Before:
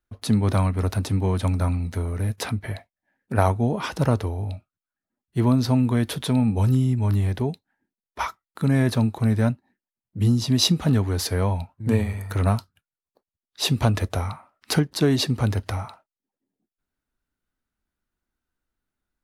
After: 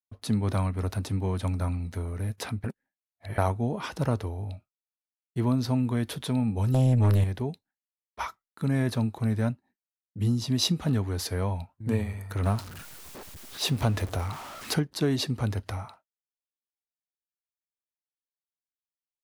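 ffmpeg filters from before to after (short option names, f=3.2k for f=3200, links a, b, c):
-filter_complex "[0:a]asettb=1/sr,asplit=3[a][b][c];[a]atrim=end=6.744[d];[b]atrim=start=6.74:end=7.24,asetpts=PTS-STARTPTS,afade=t=in:d=0.004:c=qsin,afade=t=out:st=0.496:d=0.004:c=qsin,aeval=exprs='0.266*sin(PI/2*2*val(0)/0.266)':c=same[e];[c]atrim=start=7.236[f];[d][e]acrossfade=d=0.004:c1=hsin:c2=qsin[g];[g][f]acrossfade=d=0.004:c1=qsin:c2=hsin,asettb=1/sr,asplit=3[h][i][j];[h]atrim=end=12.434[k];[i]atrim=start=12.43:end=14.74,asetpts=PTS-STARTPTS,afade=t=in:d=0.004:c=qsin,afade=t=out:st=2.306:d=0.004:c=qsin,aeval=exprs='val(0)+0.5*0.0316*sgn(val(0))':c=same[l];[j]atrim=start=14.736[m];[k][l]acrossfade=d=0.004:c1=hsin:c2=qsin[n];[n][m]acrossfade=d=0.004:c1=qsin:c2=hsin,asplit=3[o][p][q];[o]atrim=end=2.642[r];[p]atrim=start=2.638:end=3.382,asetpts=PTS-STARTPTS,areverse[s];[q]atrim=start=3.378[t];[r][s]acrossfade=d=0.004:c1=hsin:c2=hsin[u];[u][t]acrossfade=d=0.004:c1=hsin:c2=hsin,agate=range=-33dB:threshold=-42dB:ratio=3:detection=peak,volume=-6dB"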